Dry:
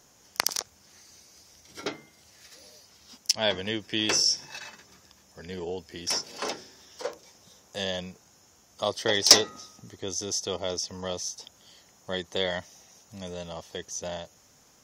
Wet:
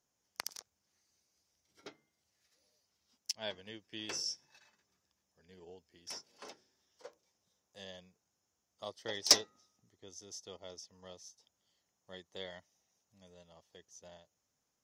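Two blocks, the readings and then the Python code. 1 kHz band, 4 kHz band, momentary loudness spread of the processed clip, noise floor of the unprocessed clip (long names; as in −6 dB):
−14.5 dB, −11.5 dB, 22 LU, −60 dBFS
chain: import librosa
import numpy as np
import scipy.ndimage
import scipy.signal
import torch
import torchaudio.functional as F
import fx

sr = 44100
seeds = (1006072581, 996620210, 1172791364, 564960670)

y = fx.upward_expand(x, sr, threshold_db=-42.0, expansion=1.5)
y = y * 10.0 ** (-8.5 / 20.0)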